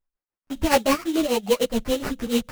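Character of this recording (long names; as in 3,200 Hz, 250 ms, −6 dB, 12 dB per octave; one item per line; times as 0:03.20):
tremolo triangle 6.9 Hz, depth 90%
aliases and images of a low sample rate 3,500 Hz, jitter 20%
a shimmering, thickened sound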